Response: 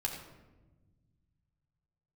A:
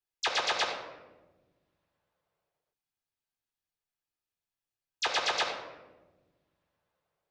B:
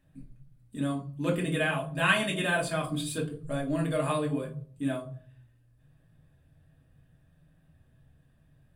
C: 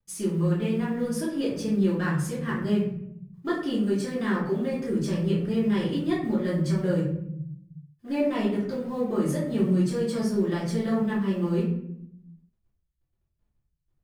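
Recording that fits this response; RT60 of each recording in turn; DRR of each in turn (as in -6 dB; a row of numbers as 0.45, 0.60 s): A; 1.2, 0.50, 0.70 s; 0.5, -3.5, -9.0 dB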